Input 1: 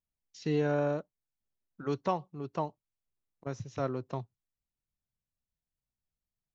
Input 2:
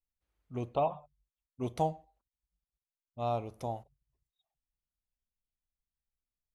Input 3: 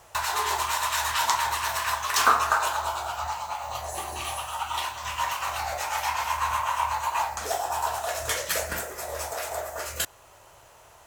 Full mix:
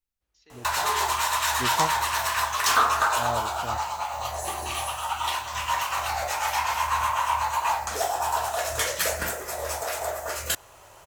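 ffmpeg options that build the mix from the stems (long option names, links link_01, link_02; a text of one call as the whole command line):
ffmpeg -i stem1.wav -i stem2.wav -i stem3.wav -filter_complex "[0:a]highpass=740,volume=-14dB,asplit=2[link_01][link_02];[1:a]volume=2.5dB[link_03];[2:a]adelay=500,volume=2.5dB[link_04];[link_02]apad=whole_len=288563[link_05];[link_03][link_05]sidechaincompress=threshold=-60dB:ratio=8:attack=16:release=390[link_06];[link_01][link_06][link_04]amix=inputs=3:normalize=0,asoftclip=type=tanh:threshold=-13dB" out.wav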